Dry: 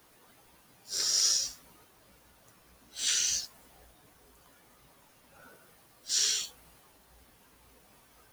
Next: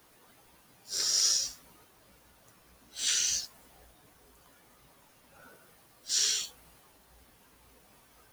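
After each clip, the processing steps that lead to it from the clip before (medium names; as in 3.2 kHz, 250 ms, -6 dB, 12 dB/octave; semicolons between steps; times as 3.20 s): no audible change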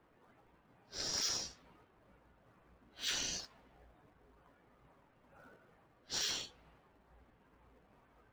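low-pass 4.5 kHz 12 dB/octave; level-controlled noise filter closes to 1.7 kHz, open at -32 dBFS; in parallel at -10 dB: decimation with a swept rate 21×, swing 160% 2.2 Hz; on the sum: trim -5.5 dB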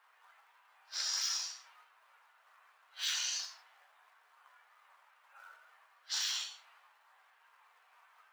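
high-pass 960 Hz 24 dB/octave; compression 3:1, threshold -42 dBFS, peak gain reduction 8 dB; gated-style reverb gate 180 ms falling, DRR 4.5 dB; trim +7 dB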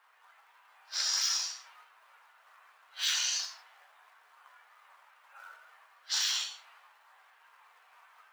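level rider gain up to 3 dB; trim +2 dB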